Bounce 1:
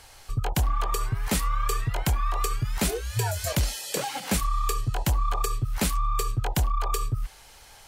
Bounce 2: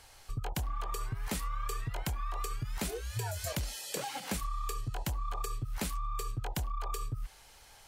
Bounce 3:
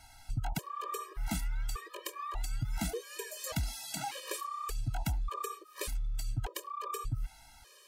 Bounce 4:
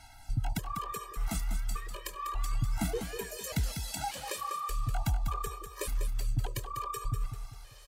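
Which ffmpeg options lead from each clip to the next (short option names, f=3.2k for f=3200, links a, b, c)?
-af "acompressor=threshold=-25dB:ratio=6,volume=-6.5dB"
-af "afftfilt=real='re*gt(sin(2*PI*0.85*pts/sr)*(1-2*mod(floor(b*sr/1024/320),2)),0)':imag='im*gt(sin(2*PI*0.85*pts/sr)*(1-2*mod(floor(b*sr/1024/320),2)),0)':win_size=1024:overlap=0.75,volume=2.5dB"
-filter_complex "[0:a]aphaser=in_gain=1:out_gain=1:delay=1.7:decay=0.33:speed=0.33:type=sinusoidal,asplit=2[a][b];[b]aecho=0:1:197|394|591|788:0.398|0.155|0.0606|0.0236[c];[a][c]amix=inputs=2:normalize=0"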